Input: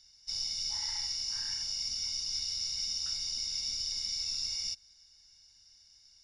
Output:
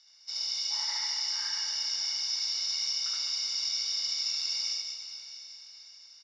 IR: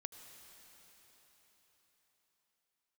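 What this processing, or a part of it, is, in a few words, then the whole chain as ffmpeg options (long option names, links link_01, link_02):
station announcement: -filter_complex "[0:a]highpass=490,lowpass=4700,equalizer=frequency=1200:width_type=o:width=0.21:gain=5.5,aecho=1:1:72.89|207:1|0.501[link_01];[1:a]atrim=start_sample=2205[link_02];[link_01][link_02]afir=irnorm=-1:irlink=0,highpass=73,volume=8dB"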